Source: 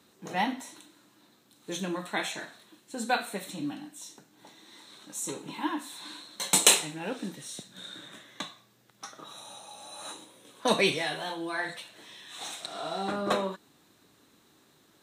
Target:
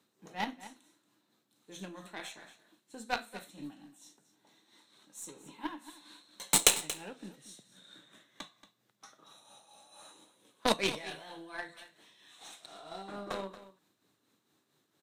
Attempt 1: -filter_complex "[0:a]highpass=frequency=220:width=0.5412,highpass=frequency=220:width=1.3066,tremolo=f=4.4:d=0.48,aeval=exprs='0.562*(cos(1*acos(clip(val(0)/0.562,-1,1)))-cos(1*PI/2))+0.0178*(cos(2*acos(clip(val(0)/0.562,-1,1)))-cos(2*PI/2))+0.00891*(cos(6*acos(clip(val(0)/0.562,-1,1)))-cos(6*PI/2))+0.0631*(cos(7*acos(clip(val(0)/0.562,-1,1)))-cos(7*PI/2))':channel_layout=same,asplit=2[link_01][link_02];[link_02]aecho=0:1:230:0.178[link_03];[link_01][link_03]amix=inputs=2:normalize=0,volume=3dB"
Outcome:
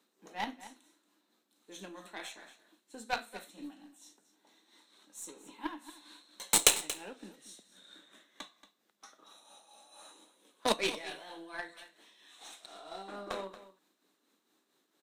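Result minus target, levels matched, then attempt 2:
125 Hz band −6.0 dB
-filter_complex "[0:a]highpass=frequency=89:width=0.5412,highpass=frequency=89:width=1.3066,tremolo=f=4.4:d=0.48,aeval=exprs='0.562*(cos(1*acos(clip(val(0)/0.562,-1,1)))-cos(1*PI/2))+0.0178*(cos(2*acos(clip(val(0)/0.562,-1,1)))-cos(2*PI/2))+0.00891*(cos(6*acos(clip(val(0)/0.562,-1,1)))-cos(6*PI/2))+0.0631*(cos(7*acos(clip(val(0)/0.562,-1,1)))-cos(7*PI/2))':channel_layout=same,asplit=2[link_01][link_02];[link_02]aecho=0:1:230:0.178[link_03];[link_01][link_03]amix=inputs=2:normalize=0,volume=3dB"

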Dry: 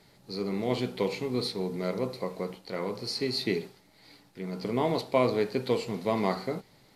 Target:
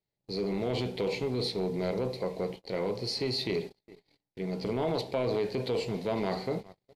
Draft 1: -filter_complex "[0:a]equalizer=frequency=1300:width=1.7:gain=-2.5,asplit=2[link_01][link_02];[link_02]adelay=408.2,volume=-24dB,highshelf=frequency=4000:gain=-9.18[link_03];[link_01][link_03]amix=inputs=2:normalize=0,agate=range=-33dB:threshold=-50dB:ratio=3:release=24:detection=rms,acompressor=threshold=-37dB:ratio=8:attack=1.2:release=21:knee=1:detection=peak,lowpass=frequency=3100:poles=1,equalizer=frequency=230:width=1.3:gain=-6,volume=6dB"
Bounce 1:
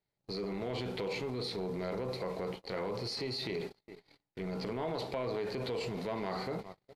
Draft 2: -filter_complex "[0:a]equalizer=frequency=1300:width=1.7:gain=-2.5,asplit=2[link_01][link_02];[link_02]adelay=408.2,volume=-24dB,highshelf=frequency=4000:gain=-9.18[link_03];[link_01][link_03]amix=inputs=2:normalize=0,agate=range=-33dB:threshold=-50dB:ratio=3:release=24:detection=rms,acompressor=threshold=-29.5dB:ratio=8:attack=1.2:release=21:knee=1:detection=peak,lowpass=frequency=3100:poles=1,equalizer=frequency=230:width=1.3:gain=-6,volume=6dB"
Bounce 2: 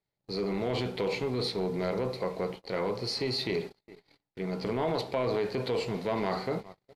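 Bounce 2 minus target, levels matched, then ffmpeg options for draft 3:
1,000 Hz band +2.5 dB
-filter_complex "[0:a]equalizer=frequency=1300:width=1.7:gain=-13,asplit=2[link_01][link_02];[link_02]adelay=408.2,volume=-24dB,highshelf=frequency=4000:gain=-9.18[link_03];[link_01][link_03]amix=inputs=2:normalize=0,agate=range=-33dB:threshold=-50dB:ratio=3:release=24:detection=rms,acompressor=threshold=-29.5dB:ratio=8:attack=1.2:release=21:knee=1:detection=peak,lowpass=frequency=3100:poles=1,equalizer=frequency=230:width=1.3:gain=-6,volume=6dB"

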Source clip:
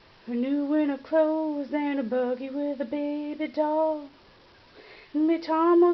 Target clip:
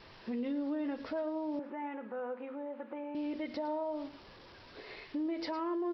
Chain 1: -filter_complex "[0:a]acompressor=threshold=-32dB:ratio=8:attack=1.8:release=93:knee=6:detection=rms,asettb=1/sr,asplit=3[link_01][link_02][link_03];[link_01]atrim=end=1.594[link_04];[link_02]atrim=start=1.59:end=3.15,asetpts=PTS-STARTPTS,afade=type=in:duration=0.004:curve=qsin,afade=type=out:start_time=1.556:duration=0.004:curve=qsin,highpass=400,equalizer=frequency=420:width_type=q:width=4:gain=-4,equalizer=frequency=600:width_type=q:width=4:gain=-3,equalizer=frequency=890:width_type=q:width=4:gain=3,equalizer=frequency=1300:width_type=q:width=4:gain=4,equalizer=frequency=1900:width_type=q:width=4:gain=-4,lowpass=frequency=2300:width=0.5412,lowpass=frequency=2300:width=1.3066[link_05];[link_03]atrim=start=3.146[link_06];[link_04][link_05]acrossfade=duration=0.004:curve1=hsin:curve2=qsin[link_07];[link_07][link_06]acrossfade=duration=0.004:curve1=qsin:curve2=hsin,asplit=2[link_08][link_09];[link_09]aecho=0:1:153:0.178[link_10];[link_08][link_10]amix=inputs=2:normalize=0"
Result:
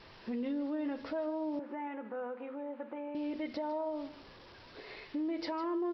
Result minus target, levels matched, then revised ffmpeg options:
echo 44 ms late
-filter_complex "[0:a]acompressor=threshold=-32dB:ratio=8:attack=1.8:release=93:knee=6:detection=rms,asettb=1/sr,asplit=3[link_01][link_02][link_03];[link_01]atrim=end=1.594[link_04];[link_02]atrim=start=1.59:end=3.15,asetpts=PTS-STARTPTS,afade=type=in:duration=0.004:curve=qsin,afade=type=out:start_time=1.556:duration=0.004:curve=qsin,highpass=400,equalizer=frequency=420:width_type=q:width=4:gain=-4,equalizer=frequency=600:width_type=q:width=4:gain=-3,equalizer=frequency=890:width_type=q:width=4:gain=3,equalizer=frequency=1300:width_type=q:width=4:gain=4,equalizer=frequency=1900:width_type=q:width=4:gain=-4,lowpass=frequency=2300:width=0.5412,lowpass=frequency=2300:width=1.3066[link_05];[link_03]atrim=start=3.146[link_06];[link_04][link_05]acrossfade=duration=0.004:curve1=hsin:curve2=qsin[link_07];[link_07][link_06]acrossfade=duration=0.004:curve1=qsin:curve2=hsin,asplit=2[link_08][link_09];[link_09]aecho=0:1:109:0.178[link_10];[link_08][link_10]amix=inputs=2:normalize=0"

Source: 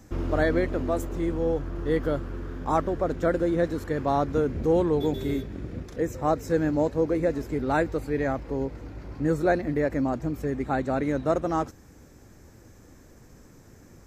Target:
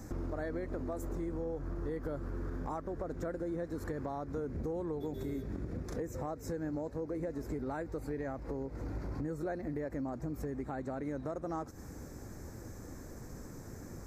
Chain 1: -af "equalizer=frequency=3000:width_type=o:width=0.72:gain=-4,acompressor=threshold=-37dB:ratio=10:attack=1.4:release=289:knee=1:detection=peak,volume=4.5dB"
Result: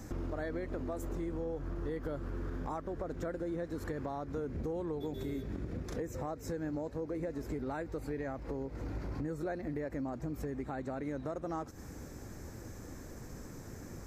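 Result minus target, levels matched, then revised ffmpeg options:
4,000 Hz band +3.5 dB
-af "equalizer=frequency=3000:width_type=o:width=0.72:gain=-12.5,acompressor=threshold=-37dB:ratio=10:attack=1.4:release=289:knee=1:detection=peak,volume=4.5dB"

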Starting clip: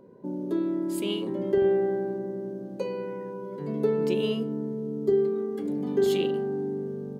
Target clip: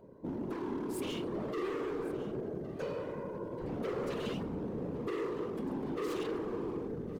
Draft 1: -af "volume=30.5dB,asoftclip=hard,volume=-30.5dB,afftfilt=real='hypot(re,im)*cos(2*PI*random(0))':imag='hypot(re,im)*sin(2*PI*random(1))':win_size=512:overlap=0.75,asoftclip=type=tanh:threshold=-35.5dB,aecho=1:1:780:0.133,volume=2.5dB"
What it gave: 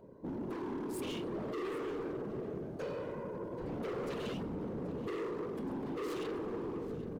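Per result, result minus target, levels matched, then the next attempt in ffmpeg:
soft clipping: distortion +10 dB; echo 333 ms early
-af "volume=30.5dB,asoftclip=hard,volume=-30.5dB,afftfilt=real='hypot(re,im)*cos(2*PI*random(0))':imag='hypot(re,im)*sin(2*PI*random(1))':win_size=512:overlap=0.75,asoftclip=type=tanh:threshold=-28dB,aecho=1:1:780:0.133,volume=2.5dB"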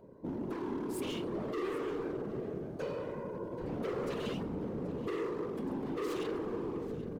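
echo 333 ms early
-af "volume=30.5dB,asoftclip=hard,volume=-30.5dB,afftfilt=real='hypot(re,im)*cos(2*PI*random(0))':imag='hypot(re,im)*sin(2*PI*random(1))':win_size=512:overlap=0.75,asoftclip=type=tanh:threshold=-28dB,aecho=1:1:1113:0.133,volume=2.5dB"

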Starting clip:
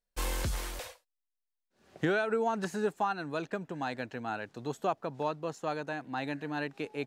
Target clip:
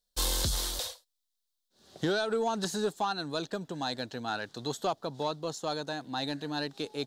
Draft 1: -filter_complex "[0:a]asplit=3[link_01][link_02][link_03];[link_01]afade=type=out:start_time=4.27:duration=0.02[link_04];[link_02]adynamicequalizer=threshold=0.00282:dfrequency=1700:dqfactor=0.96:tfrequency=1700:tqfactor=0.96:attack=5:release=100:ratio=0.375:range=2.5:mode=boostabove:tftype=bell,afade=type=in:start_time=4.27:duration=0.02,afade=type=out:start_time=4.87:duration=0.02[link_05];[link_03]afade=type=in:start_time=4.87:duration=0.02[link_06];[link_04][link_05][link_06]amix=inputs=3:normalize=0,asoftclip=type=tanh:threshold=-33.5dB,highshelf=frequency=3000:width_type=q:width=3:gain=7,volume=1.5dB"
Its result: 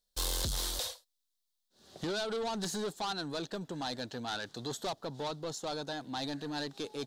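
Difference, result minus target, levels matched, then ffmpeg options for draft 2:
soft clipping: distortion +13 dB
-filter_complex "[0:a]asplit=3[link_01][link_02][link_03];[link_01]afade=type=out:start_time=4.27:duration=0.02[link_04];[link_02]adynamicequalizer=threshold=0.00282:dfrequency=1700:dqfactor=0.96:tfrequency=1700:tqfactor=0.96:attack=5:release=100:ratio=0.375:range=2.5:mode=boostabove:tftype=bell,afade=type=in:start_time=4.27:duration=0.02,afade=type=out:start_time=4.87:duration=0.02[link_05];[link_03]afade=type=in:start_time=4.87:duration=0.02[link_06];[link_04][link_05][link_06]amix=inputs=3:normalize=0,asoftclip=type=tanh:threshold=-21.5dB,highshelf=frequency=3000:width_type=q:width=3:gain=7,volume=1.5dB"

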